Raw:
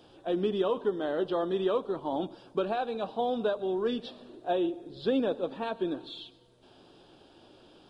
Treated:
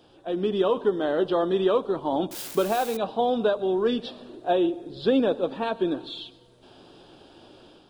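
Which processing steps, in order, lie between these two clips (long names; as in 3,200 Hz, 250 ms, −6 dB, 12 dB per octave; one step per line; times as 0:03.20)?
0:02.31–0:02.97: spike at every zero crossing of −30.5 dBFS
automatic gain control gain up to 6 dB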